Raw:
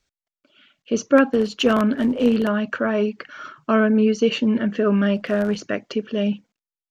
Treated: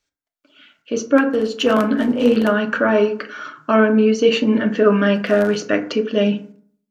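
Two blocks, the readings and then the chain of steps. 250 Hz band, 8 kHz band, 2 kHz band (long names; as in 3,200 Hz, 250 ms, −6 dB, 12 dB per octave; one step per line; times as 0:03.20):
+2.0 dB, can't be measured, +4.5 dB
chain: low-shelf EQ 150 Hz −8.5 dB
automatic gain control
feedback delay network reverb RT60 0.56 s, low-frequency decay 1.1×, high-frequency decay 0.45×, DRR 5 dB
level −2.5 dB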